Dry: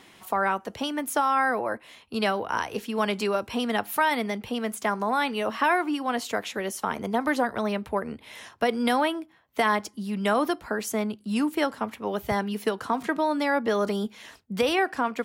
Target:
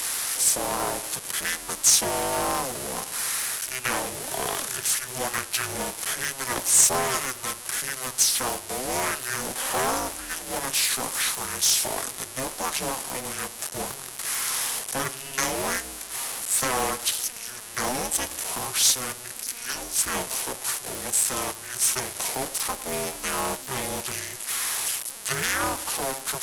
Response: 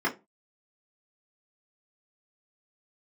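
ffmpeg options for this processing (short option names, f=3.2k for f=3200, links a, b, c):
-filter_complex "[0:a]aeval=exprs='val(0)+0.5*0.0299*sgn(val(0))':c=same,highpass=f=340:w=0.5412,highpass=f=340:w=1.3066,aemphasis=mode=production:type=50fm,asplit=2[a][b];[1:a]atrim=start_sample=2205,adelay=41[c];[b][c]afir=irnorm=-1:irlink=0,volume=-29dB[d];[a][d]amix=inputs=2:normalize=0,aeval=exprs='0.668*(cos(1*acos(clip(val(0)/0.668,-1,1)))-cos(1*PI/2))+0.237*(cos(2*acos(clip(val(0)/0.668,-1,1)))-cos(2*PI/2))':c=same,tiltshelf=f=650:g=-8.5,asetrate=25442,aresample=44100,aeval=exprs='val(0)*sgn(sin(2*PI*130*n/s))':c=same,volume=-9.5dB"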